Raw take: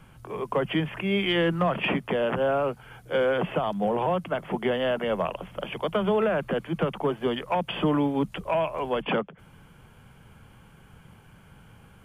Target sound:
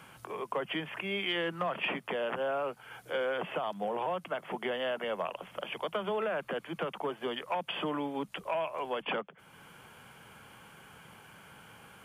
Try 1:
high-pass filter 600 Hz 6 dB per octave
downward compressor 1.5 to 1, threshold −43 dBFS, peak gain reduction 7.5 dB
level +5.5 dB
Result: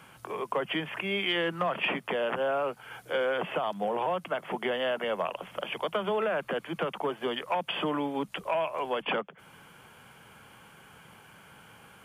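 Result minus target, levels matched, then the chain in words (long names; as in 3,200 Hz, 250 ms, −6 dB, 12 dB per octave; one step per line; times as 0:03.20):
downward compressor: peak gain reduction −4 dB
high-pass filter 600 Hz 6 dB per octave
downward compressor 1.5 to 1, threshold −54.5 dBFS, peak gain reduction 11 dB
level +5.5 dB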